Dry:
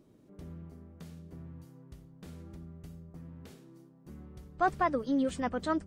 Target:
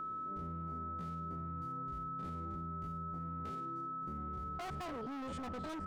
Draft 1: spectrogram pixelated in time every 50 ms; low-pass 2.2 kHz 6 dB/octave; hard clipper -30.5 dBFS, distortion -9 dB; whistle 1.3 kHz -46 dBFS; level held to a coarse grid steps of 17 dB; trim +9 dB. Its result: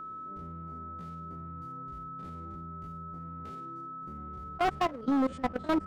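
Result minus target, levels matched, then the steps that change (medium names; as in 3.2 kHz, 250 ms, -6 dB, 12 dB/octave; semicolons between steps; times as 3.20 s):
hard clipper: distortion -8 dB
change: hard clipper -40.5 dBFS, distortion -2 dB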